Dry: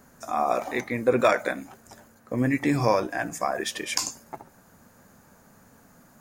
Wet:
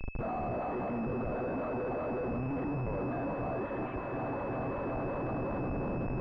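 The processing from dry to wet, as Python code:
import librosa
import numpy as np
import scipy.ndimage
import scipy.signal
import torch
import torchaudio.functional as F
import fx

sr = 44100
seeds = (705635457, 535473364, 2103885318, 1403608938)

y = fx.reverse_delay_fb(x, sr, ms=184, feedback_pct=84, wet_db=-14.0)
y = fx.over_compress(y, sr, threshold_db=-33.0, ratio=-1.0)
y = y + 10.0 ** (-19.5 / 20.0) * np.pad(y, (int(150 * sr / 1000.0), 0))[:len(y)]
y = fx.schmitt(y, sr, flips_db=-40.5)
y = fx.pwm(y, sr, carrier_hz=2600.0)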